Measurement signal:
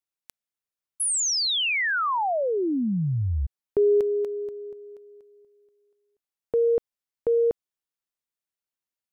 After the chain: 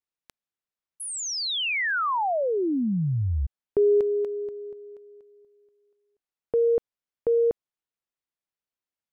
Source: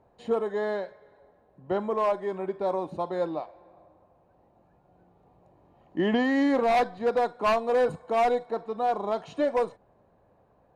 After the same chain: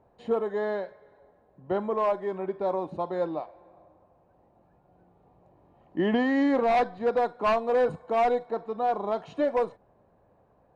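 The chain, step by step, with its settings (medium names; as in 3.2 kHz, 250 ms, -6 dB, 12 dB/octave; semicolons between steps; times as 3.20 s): low-pass 3.3 kHz 6 dB/octave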